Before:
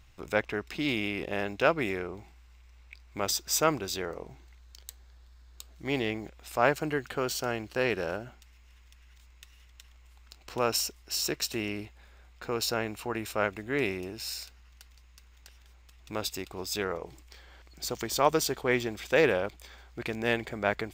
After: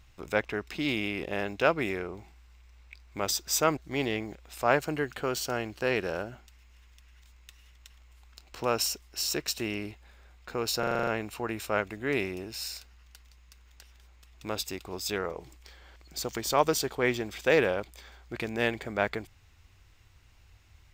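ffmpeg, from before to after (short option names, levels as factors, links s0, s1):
-filter_complex "[0:a]asplit=9[s0][s1][s2][s3][s4][s5][s6][s7][s8];[s0]atrim=end=3.772[s9];[s1]atrim=start=5.708:end=12.772[s10];[s2]atrim=start=12.728:end=12.772[s11];[s3]atrim=start=12.728:end=12.772[s12];[s4]atrim=start=12.728:end=12.772[s13];[s5]atrim=start=12.728:end=12.772[s14];[s6]atrim=start=12.728:end=12.772[s15];[s7]atrim=start=12.728:end=12.772[s16];[s8]atrim=start=12.728[s17];[s9][s10]acrossfade=d=0.004:c1=hsin:c2=hsin[s18];[s18][s11]acrossfade=d=0.004:c1=hsin:c2=hsin[s19];[s19][s12]acrossfade=d=0.004:c1=hsin:c2=hsin[s20];[s20][s13]acrossfade=d=0.004:c1=hsin:c2=hsin[s21];[s21][s14]acrossfade=d=0.004:c1=hsin:c2=hsin[s22];[s22][s15]acrossfade=d=0.004:c1=hsin:c2=hsin[s23];[s23][s16]acrossfade=d=0.004:c1=hsin:c2=hsin[s24];[s24][s17]acrossfade=d=0.004:c1=hsin:c2=hsin"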